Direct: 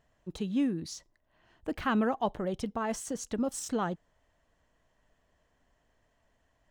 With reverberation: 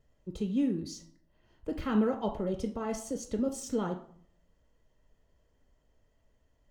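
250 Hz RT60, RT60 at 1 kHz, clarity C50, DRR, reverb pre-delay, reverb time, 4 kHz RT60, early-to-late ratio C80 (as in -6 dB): 0.80 s, 0.55 s, 10.0 dB, 4.0 dB, 3 ms, 0.55 s, 0.35 s, 14.5 dB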